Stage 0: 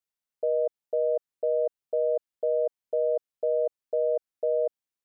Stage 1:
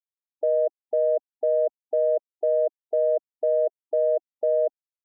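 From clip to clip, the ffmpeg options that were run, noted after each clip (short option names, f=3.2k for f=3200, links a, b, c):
-af "afftfilt=real='re*gte(hypot(re,im),0.00891)':imag='im*gte(hypot(re,im),0.00891)':win_size=1024:overlap=0.75,aecho=1:1:3:0.34,acontrast=43,volume=-2dB"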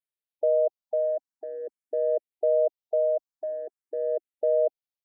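-filter_complex "[0:a]asplit=2[a][b];[b]afreqshift=0.46[c];[a][c]amix=inputs=2:normalize=1"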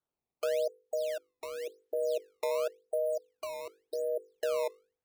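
-filter_complex "[0:a]bandreject=f=50:t=h:w=6,bandreject=f=100:t=h:w=6,bandreject=f=150:t=h:w=6,bandreject=f=200:t=h:w=6,bandreject=f=250:t=h:w=6,bandreject=f=300:t=h:w=6,bandreject=f=350:t=h:w=6,bandreject=f=400:t=h:w=6,bandreject=f=450:t=h:w=6,bandreject=f=500:t=h:w=6,acrusher=samples=16:mix=1:aa=0.000001:lfo=1:lforange=25.6:lforate=0.91,acrossover=split=480[a][b];[b]acompressor=threshold=-44dB:ratio=3[c];[a][c]amix=inputs=2:normalize=0"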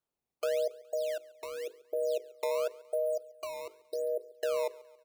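-af "aecho=1:1:139|278|417|556:0.0841|0.0429|0.0219|0.0112"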